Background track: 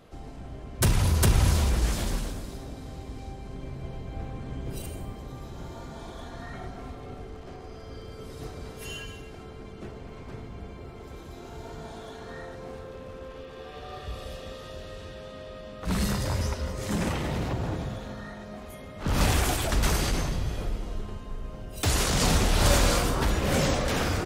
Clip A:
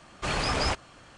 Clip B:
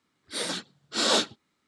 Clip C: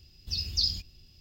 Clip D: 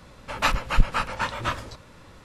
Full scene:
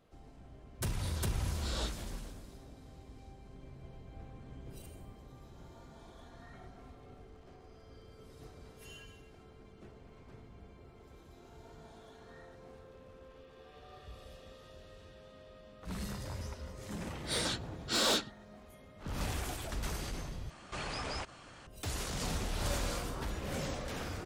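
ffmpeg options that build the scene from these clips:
-filter_complex "[2:a]asplit=2[a][b];[0:a]volume=-13.5dB[c];[b]asoftclip=type=tanh:threshold=-23dB[d];[1:a]acompressor=threshold=-36dB:ratio=3:attack=0.76:release=115:knee=1:detection=peak[e];[c]asplit=2[f][g];[f]atrim=end=20.504[h];[e]atrim=end=1.17,asetpts=PTS-STARTPTS,volume=-1.5dB[i];[g]atrim=start=21.666[j];[a]atrim=end=1.67,asetpts=PTS-STARTPTS,volume=-17.5dB,afade=t=in:d=0.004:c=hsin,afade=t=out:st=1.666:d=0.004:c=hsin,adelay=670[k];[d]atrim=end=1.67,asetpts=PTS-STARTPTS,volume=-2dB,afade=t=in:d=0.004:c=hsin,afade=t=out:st=1.666:d=0.004:c=hsin,adelay=16960[l];[h][i]acrossfade=d=0.004:c1=hsin:c2=hsin[m];[m][j]acrossfade=d=0.004:c1=hsin:c2=hsin[n];[n][k][l]amix=inputs=3:normalize=0"

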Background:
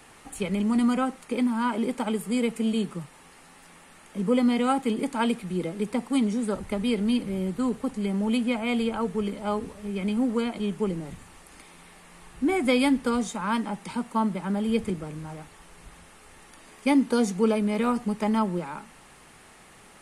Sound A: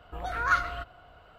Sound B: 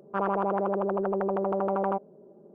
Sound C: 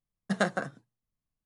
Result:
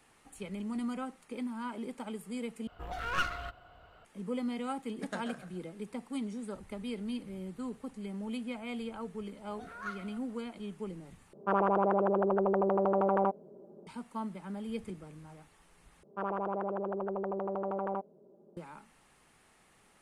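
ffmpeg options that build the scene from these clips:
-filter_complex "[1:a]asplit=2[a][b];[2:a]asplit=2[c][d];[0:a]volume=-13dB[e];[a]aeval=exprs='clip(val(0),-1,0.0158)':c=same[f];[3:a]aecho=1:1:134|268|402|536:0.299|0.102|0.0345|0.0117[g];[b]highpass=250[h];[e]asplit=4[i][j][k][l];[i]atrim=end=2.674[m];[f]atrim=end=1.38,asetpts=PTS-STARTPTS,volume=-3.5dB[n];[j]atrim=start=4.046:end=11.334[o];[c]atrim=end=2.54,asetpts=PTS-STARTPTS,volume=-0.5dB[p];[k]atrim=start=13.866:end=16.034[q];[d]atrim=end=2.54,asetpts=PTS-STARTPTS,volume=-7.5dB[r];[l]atrim=start=18.566[s];[g]atrim=end=1.45,asetpts=PTS-STARTPTS,volume=-13dB,afade=t=in:d=0.004:c=hsin,afade=t=out:st=1.446:d=0.004:c=hsin,adelay=4720[t];[h]atrim=end=1.38,asetpts=PTS-STARTPTS,volume=-16.5dB,afade=t=in:d=0.004:c=hsin,afade=t=out:st=1.376:d=0.004:c=hsin,adelay=9350[u];[m][n]acrossfade=d=0.004:c1=hsin:c2=hsin[v];[v][o]acrossfade=d=0.004:c1=hsin:c2=hsin[w];[w][p]acrossfade=d=0.004:c1=hsin:c2=hsin[x];[x][q]acrossfade=d=0.004:c1=hsin:c2=hsin[y];[y][r]acrossfade=d=0.004:c1=hsin:c2=hsin[z];[z][s]acrossfade=d=0.004:c1=hsin:c2=hsin[aa];[aa][t][u]amix=inputs=3:normalize=0"

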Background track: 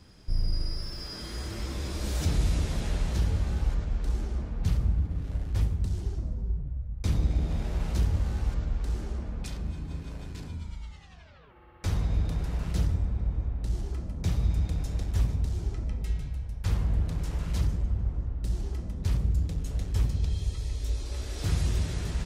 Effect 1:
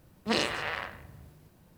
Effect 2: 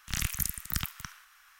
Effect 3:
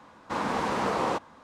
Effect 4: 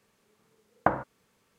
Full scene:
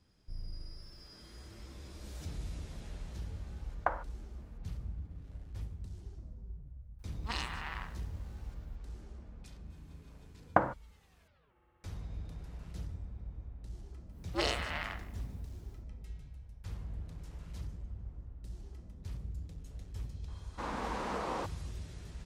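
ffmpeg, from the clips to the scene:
-filter_complex "[4:a]asplit=2[a][b];[1:a]asplit=2[c][d];[0:a]volume=-15.5dB[e];[a]highpass=600[f];[c]lowshelf=f=710:t=q:w=3:g=-7[g];[d]afreqshift=120[h];[f]atrim=end=1.58,asetpts=PTS-STARTPTS,volume=-6dB,afade=t=in:d=0.004:c=hsin,afade=t=out:st=1.576:d=0.004:c=hsin,adelay=3000[i];[g]atrim=end=1.77,asetpts=PTS-STARTPTS,volume=-10dB,afade=t=in:d=0.004:c=hsin,afade=t=out:st=1.766:d=0.004:c=hsin,adelay=6990[j];[b]atrim=end=1.58,asetpts=PTS-STARTPTS,volume=-2dB,afade=t=in:d=0.004:c=hsin,afade=t=out:st=1.576:d=0.004:c=hsin,adelay=427770S[k];[h]atrim=end=1.77,asetpts=PTS-STARTPTS,volume=-5dB,afade=t=in:d=0.1,afade=t=out:st=1.67:d=0.1,adelay=14080[l];[3:a]atrim=end=1.43,asetpts=PTS-STARTPTS,volume=-9.5dB,afade=t=in:d=0.004:c=hsin,afade=t=out:st=1.426:d=0.004:c=hsin,adelay=20280[m];[e][i][j][k][l][m]amix=inputs=6:normalize=0"

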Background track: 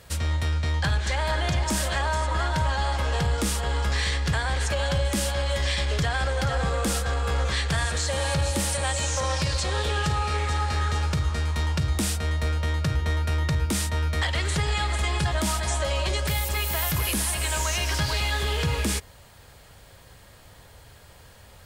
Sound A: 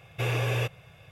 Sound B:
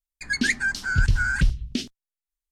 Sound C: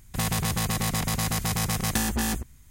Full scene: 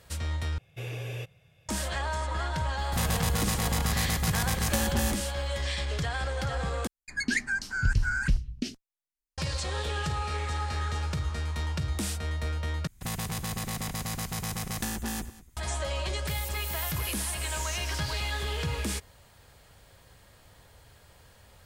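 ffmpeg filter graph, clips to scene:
-filter_complex "[3:a]asplit=2[a][b];[0:a]volume=-6dB[c];[1:a]equalizer=f=1.1k:t=o:w=1.3:g=-9[d];[2:a]equalizer=f=3.5k:t=o:w=0.42:g=-6.5[e];[b]aecho=1:1:196:0.126[f];[c]asplit=4[g][h][i][j];[g]atrim=end=0.584[k];[d]atrim=end=1.11,asetpts=PTS-STARTPTS,volume=-8dB[l];[h]atrim=start=1.686:end=6.874[m];[e]atrim=end=2.51,asetpts=PTS-STARTPTS,volume=-5dB[n];[i]atrim=start=9.376:end=12.874[o];[f]atrim=end=2.7,asetpts=PTS-STARTPTS,volume=-7dB[p];[j]atrim=start=15.566[q];[a]atrim=end=2.7,asetpts=PTS-STARTPTS,volume=-3dB,afade=t=in:d=0.004:c=hsin,afade=t=out:st=2.696:d=0.004:c=hsin,adelay=2780[r];[k][l]acrossfade=d=0.004:c1=hsin:c2=hsin[s];[s][m]acrossfade=d=0.004:c1=hsin:c2=hsin[t];[t][n]acrossfade=d=0.004:c1=hsin:c2=hsin[u];[u][o]acrossfade=d=0.004:c1=hsin:c2=hsin[v];[v][p]acrossfade=d=0.004:c1=hsin:c2=hsin[w];[w][q]acrossfade=d=0.004:c1=hsin:c2=hsin[x];[x][r]amix=inputs=2:normalize=0"

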